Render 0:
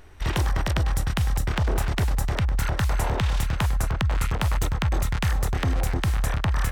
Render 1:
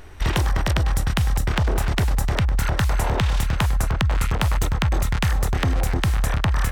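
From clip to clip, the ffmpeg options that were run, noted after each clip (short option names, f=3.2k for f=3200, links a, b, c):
-af "acompressor=threshold=-23dB:ratio=6,volume=6.5dB"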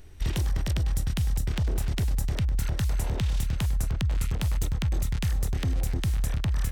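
-af "equalizer=f=1.1k:w=0.53:g=-12,volume=-5dB"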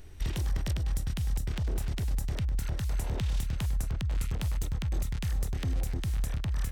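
-af "alimiter=limit=-21.5dB:level=0:latency=1:release=347"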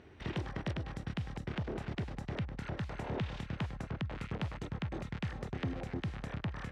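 -af "highpass=160,lowpass=2.4k,volume=2.5dB"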